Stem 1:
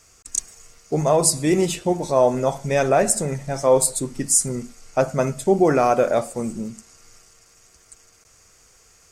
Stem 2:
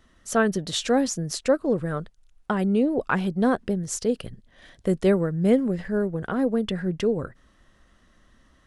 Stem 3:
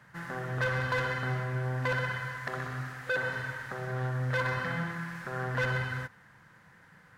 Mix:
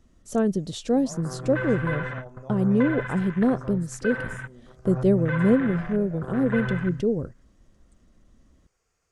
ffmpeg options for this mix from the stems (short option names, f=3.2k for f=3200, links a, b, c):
-filter_complex "[0:a]acompressor=threshold=-30dB:ratio=2.5,volume=-16dB[a];[1:a]equalizer=f=1.6k:w=0.62:g=-15,volume=2.5dB,asplit=2[b][c];[2:a]afwtdn=0.0178,equalizer=f=760:t=o:w=0.75:g=-5,adelay=950,volume=2.5dB[d];[c]apad=whole_len=358206[e];[d][e]sidechaingate=range=-21dB:threshold=-48dB:ratio=16:detection=peak[f];[a][b][f]amix=inputs=3:normalize=0,highshelf=f=3.4k:g=-11"